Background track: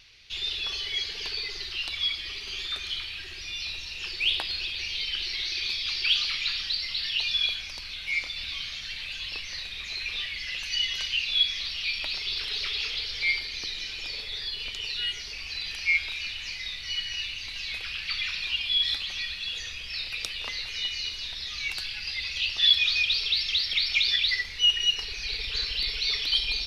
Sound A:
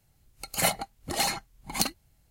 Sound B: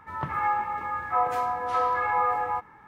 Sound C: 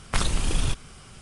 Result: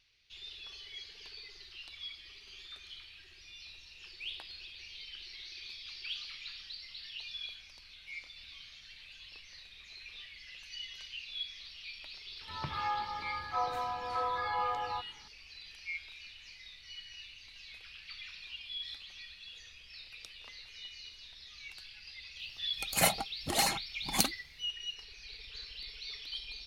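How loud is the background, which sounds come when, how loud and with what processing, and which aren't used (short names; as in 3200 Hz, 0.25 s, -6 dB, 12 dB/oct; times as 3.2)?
background track -16.5 dB
12.41 add B -9 dB + low shelf 74 Hz +11 dB
22.39 add A -2 dB
not used: C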